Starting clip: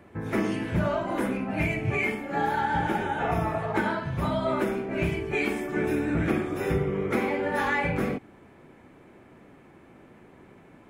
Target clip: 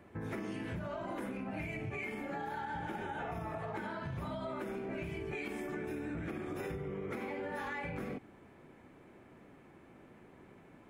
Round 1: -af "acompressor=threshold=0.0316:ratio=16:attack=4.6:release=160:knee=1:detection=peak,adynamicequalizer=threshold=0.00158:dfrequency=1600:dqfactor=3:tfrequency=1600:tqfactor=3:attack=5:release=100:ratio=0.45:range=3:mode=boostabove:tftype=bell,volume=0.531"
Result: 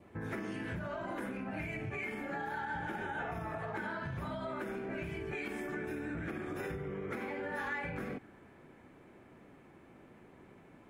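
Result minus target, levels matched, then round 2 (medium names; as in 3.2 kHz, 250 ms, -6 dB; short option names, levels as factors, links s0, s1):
2 kHz band +3.0 dB
-af "acompressor=threshold=0.0316:ratio=16:attack=4.6:release=160:knee=1:detection=peak,volume=0.531"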